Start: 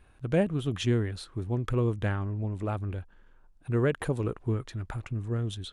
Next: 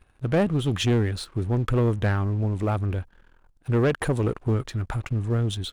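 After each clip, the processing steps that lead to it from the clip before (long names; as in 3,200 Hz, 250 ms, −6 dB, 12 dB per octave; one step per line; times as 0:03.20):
leveller curve on the samples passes 2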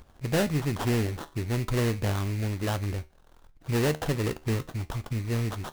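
sample-rate reduction 2,300 Hz, jitter 20%
tuned comb filter 76 Hz, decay 0.3 s, harmonics all, mix 50%
upward compression, threshold −42 dBFS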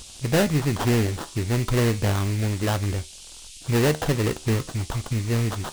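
noise in a band 2,700–9,700 Hz −49 dBFS
level +5 dB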